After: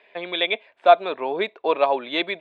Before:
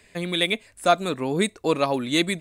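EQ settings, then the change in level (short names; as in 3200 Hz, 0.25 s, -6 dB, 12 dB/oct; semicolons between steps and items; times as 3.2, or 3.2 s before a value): speaker cabinet 380–3500 Hz, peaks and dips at 400 Hz +5 dB, 630 Hz +4 dB, 950 Hz +6 dB, 1600 Hz +4 dB, 2400 Hz +6 dB, 3400 Hz +8 dB; bell 700 Hz +8.5 dB 1.3 oct; -5.5 dB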